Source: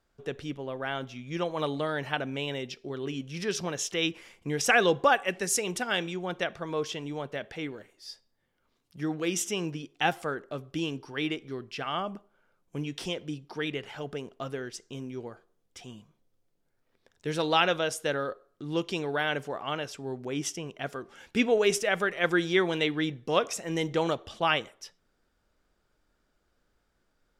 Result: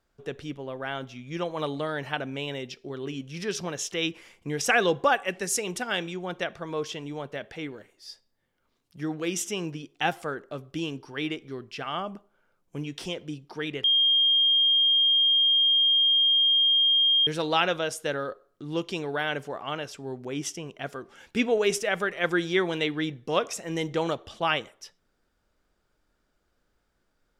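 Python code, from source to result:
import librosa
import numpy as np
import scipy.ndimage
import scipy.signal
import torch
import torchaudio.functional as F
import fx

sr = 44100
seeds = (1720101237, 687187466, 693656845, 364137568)

y = fx.edit(x, sr, fx.bleep(start_s=13.84, length_s=3.43, hz=3220.0, db=-18.0), tone=tone)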